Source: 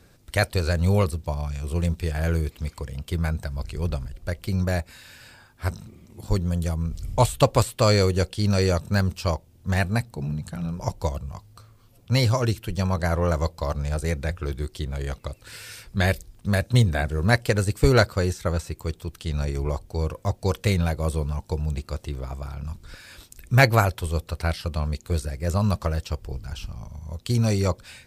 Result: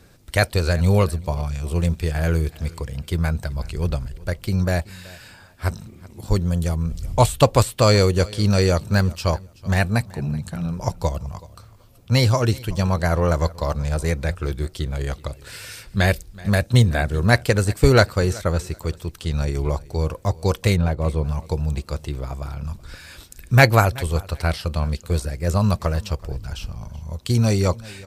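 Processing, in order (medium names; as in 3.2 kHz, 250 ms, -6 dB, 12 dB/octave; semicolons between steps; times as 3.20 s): 20.75–21.24 s: low-pass 1.1 kHz -> 2.6 kHz 6 dB/octave; on a send: feedback delay 378 ms, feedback 20%, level -21.5 dB; on the sum: trim +3.5 dB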